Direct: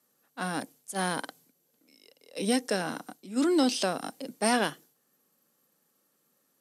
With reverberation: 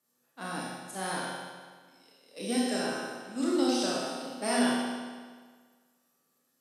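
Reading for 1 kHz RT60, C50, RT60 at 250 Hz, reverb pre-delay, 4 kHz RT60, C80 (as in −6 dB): 1.6 s, −2.0 dB, 1.6 s, 26 ms, 1.5 s, 0.5 dB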